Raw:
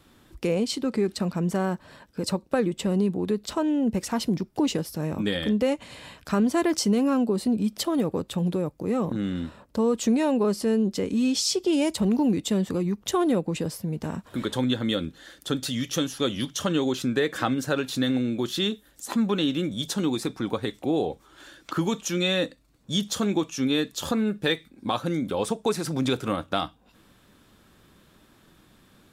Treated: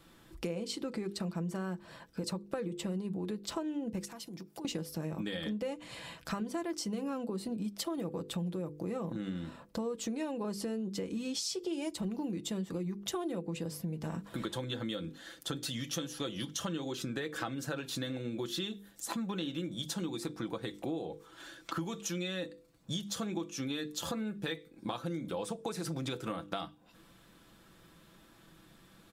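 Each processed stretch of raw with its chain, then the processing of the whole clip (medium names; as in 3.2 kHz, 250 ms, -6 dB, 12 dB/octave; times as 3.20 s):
4.05–4.65 s: high-pass 190 Hz 6 dB/octave + treble shelf 5.3 kHz +8.5 dB + compression 8:1, threshold -39 dBFS
whole clip: hum notches 50/100/150/200/250/300/350/400/450/500 Hz; comb 6 ms, depth 45%; compression 6:1, threshold -31 dBFS; trim -3 dB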